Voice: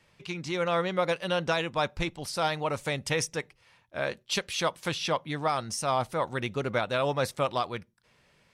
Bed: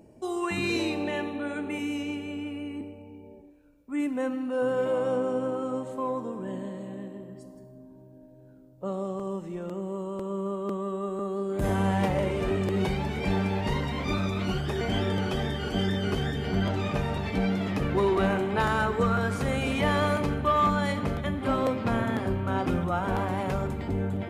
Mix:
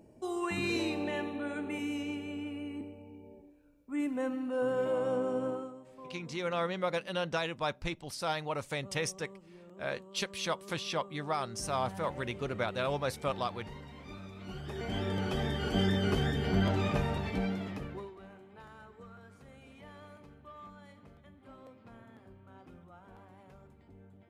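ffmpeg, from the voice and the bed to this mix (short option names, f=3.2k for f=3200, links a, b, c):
-filter_complex "[0:a]adelay=5850,volume=-5.5dB[a];[1:a]volume=12.5dB,afade=t=out:st=5.5:d=0.24:silence=0.199526,afade=t=in:st=14.38:d=1.41:silence=0.141254,afade=t=out:st=16.85:d=1.27:silence=0.0530884[b];[a][b]amix=inputs=2:normalize=0"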